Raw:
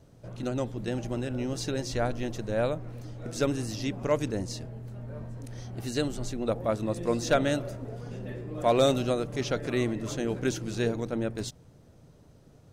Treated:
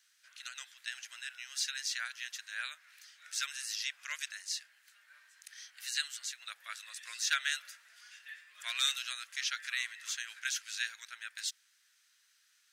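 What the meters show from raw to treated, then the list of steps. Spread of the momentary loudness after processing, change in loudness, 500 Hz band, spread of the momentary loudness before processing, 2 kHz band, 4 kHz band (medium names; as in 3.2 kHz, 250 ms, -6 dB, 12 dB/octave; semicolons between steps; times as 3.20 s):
18 LU, -6.5 dB, under -40 dB, 14 LU, +2.0 dB, +3.5 dB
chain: Chebyshev high-pass 1.6 kHz, order 4; trim +3.5 dB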